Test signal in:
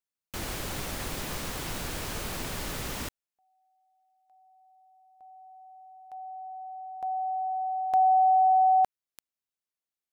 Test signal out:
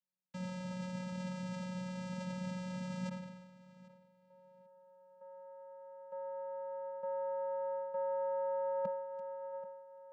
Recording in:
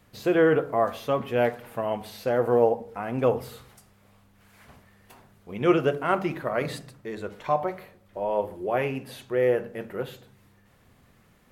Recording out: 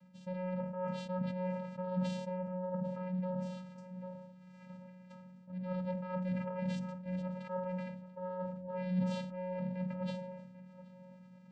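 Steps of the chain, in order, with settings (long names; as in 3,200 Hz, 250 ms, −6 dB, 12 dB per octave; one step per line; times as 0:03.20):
tape delay 786 ms, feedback 29%, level −21 dB, low-pass 4,000 Hz
reversed playback
downward compressor 5 to 1, threshold −35 dBFS
reversed playback
channel vocoder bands 8, square 183 Hz
level that may fall only so fast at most 46 dB per second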